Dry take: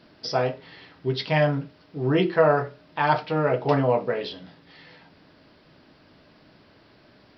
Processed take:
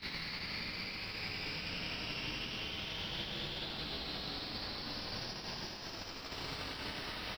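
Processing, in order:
ceiling on every frequency bin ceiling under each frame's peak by 23 dB
on a send: single-tap delay 764 ms −4 dB
on the sum: phase shifter 0.29 Hz, delay 1.4 ms, feedback 54%
extreme stretch with random phases 15×, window 0.10 s, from 0:06.33
noise gate −51 dBFS, range −31 dB
parametric band 670 Hz −3 dB 2 octaves
single-tap delay 81 ms −6.5 dB
multiband upward and downward compressor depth 100%
level +13.5 dB

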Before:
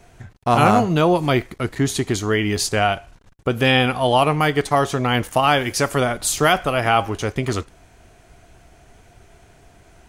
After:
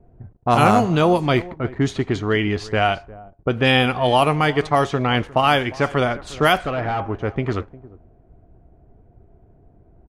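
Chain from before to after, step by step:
0:06.55–0:07.07: gain into a clipping stage and back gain 19.5 dB
slap from a distant wall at 61 metres, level −19 dB
low-pass that shuts in the quiet parts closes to 440 Hz, open at −11.5 dBFS

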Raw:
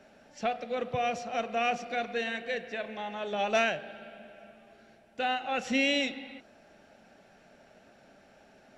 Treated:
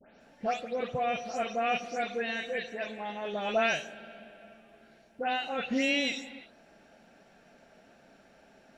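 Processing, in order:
every frequency bin delayed by itself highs late, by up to 202 ms

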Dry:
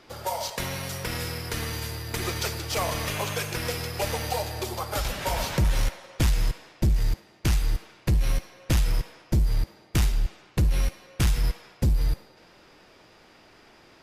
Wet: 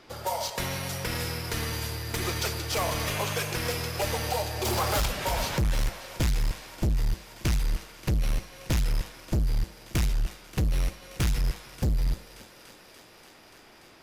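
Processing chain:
feedback echo with a high-pass in the loop 290 ms, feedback 82%, high-pass 300 Hz, level −15.5 dB
hard clipping −22 dBFS, distortion −13 dB
0:04.65–0:05.06: leveller curve on the samples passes 3

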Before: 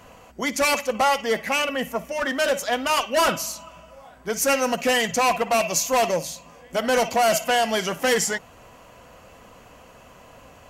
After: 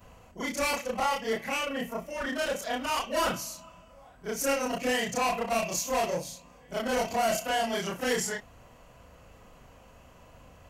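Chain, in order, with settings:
every overlapping window played backwards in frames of 80 ms
low-shelf EQ 140 Hz +10.5 dB
level −5 dB

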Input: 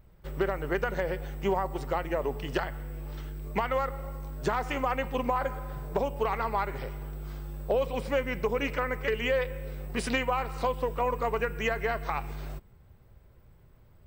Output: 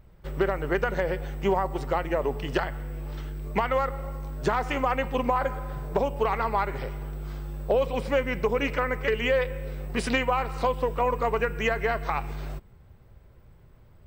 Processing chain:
high-shelf EQ 8,700 Hz −6 dB
level +3.5 dB

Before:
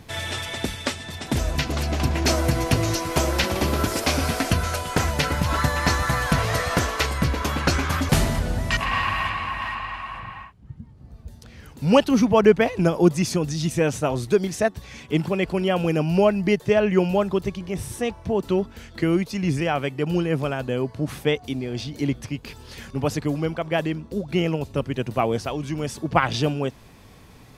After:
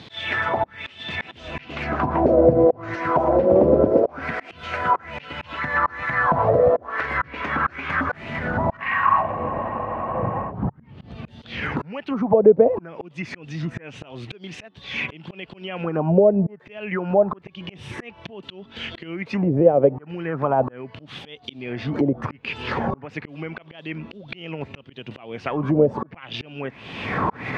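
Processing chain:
camcorder AGC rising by 33 dB per second
high-pass filter 130 Hz 12 dB per octave
downward compressor 4 to 1, threshold −19 dBFS, peak gain reduction 9 dB
volume swells 754 ms
envelope-controlled low-pass 530–4,100 Hz down, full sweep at −21 dBFS
level +3.5 dB

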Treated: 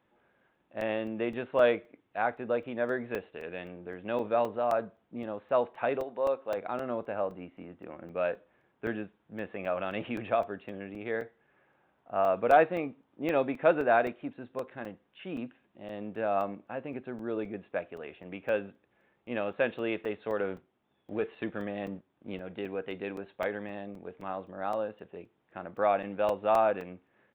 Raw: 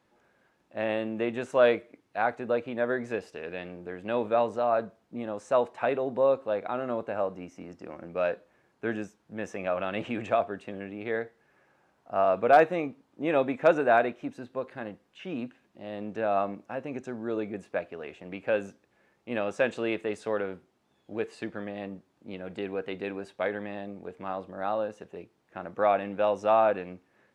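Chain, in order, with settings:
0:06.02–0:06.56: high-pass filter 950 Hz → 280 Hz 6 dB per octave
0:20.40–0:22.40: leveller curve on the samples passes 1
downsampling to 8,000 Hz
regular buffer underruns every 0.26 s, samples 128, zero, from 0:00.55
level −2.5 dB

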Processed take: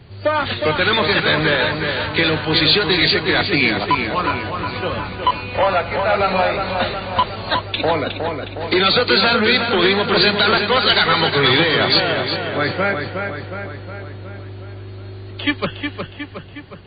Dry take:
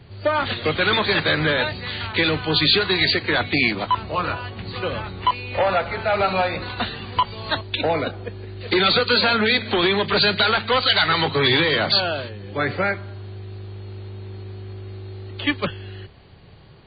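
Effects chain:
feedback echo with a low-pass in the loop 363 ms, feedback 59%, low-pass 4,000 Hz, level −5.5 dB
level +2.5 dB

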